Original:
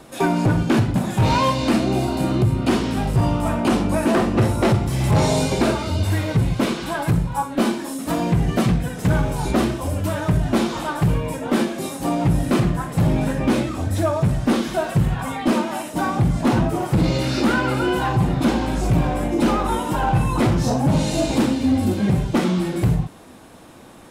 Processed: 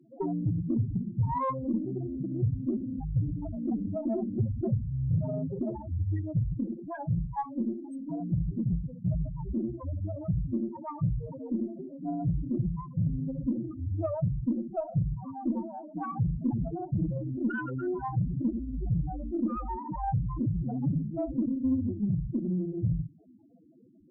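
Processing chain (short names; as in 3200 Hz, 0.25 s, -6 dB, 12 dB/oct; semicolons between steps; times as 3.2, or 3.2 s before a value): thinning echo 0.111 s, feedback 65%, high-pass 400 Hz, level -21 dB; loudest bins only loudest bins 4; added harmonics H 4 -29 dB, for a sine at -9.5 dBFS; gain -8.5 dB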